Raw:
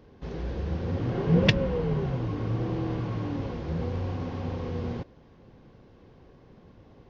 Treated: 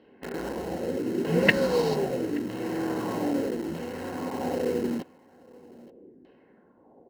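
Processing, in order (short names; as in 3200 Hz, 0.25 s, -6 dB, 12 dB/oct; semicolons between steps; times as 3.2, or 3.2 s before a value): LFO low-pass saw down 0.8 Hz 270–3300 Hz; in parallel at -6 dB: bit-crush 5-bit; on the sum: resonant low shelf 170 Hz -10.5 dB, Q 1.5; notch 3400 Hz, Q 9.6; notch comb 1200 Hz; echo 0.877 s -22.5 dB; tremolo triangle 0.71 Hz, depth 50%; 1.41–1.94 bell 4500 Hz +3.5 dB -> +14 dB 0.79 oct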